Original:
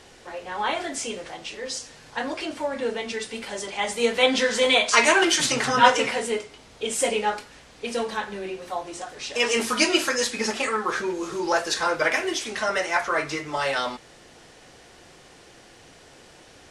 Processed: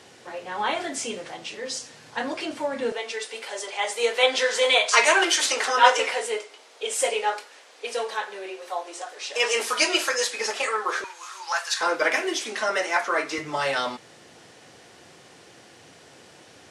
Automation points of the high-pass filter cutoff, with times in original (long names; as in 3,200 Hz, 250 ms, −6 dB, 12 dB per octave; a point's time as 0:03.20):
high-pass filter 24 dB per octave
100 Hz
from 0:02.92 400 Hz
from 0:11.04 910 Hz
from 0:11.81 240 Hz
from 0:13.38 91 Hz